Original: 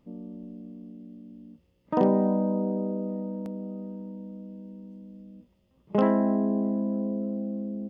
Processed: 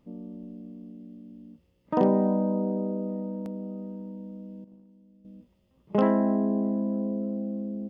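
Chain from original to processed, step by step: 4.64–5.25 gate -41 dBFS, range -12 dB

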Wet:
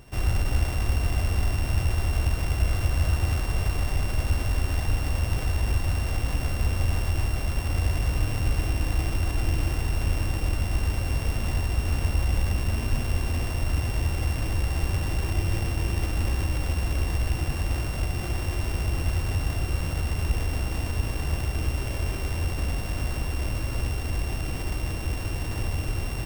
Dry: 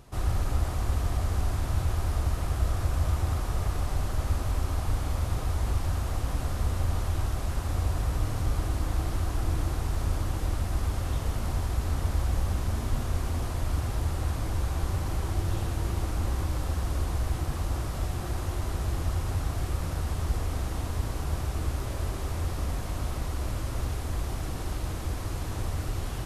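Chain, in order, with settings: sample sorter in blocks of 16 samples; gain +3 dB

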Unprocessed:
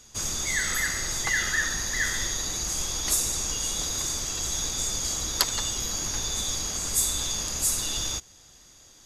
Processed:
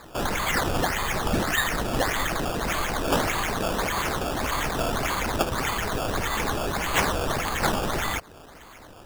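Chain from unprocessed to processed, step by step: in parallel at +1 dB: compressor, threshold -36 dBFS, peak gain reduction 17.5 dB; on the sum: decimation with a swept rate 15×, swing 100% 1.7 Hz

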